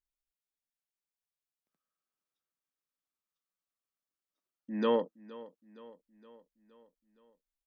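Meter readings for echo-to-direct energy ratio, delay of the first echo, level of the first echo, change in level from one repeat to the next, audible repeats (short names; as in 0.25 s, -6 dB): -17.5 dB, 0.467 s, -19.0 dB, -5.0 dB, 4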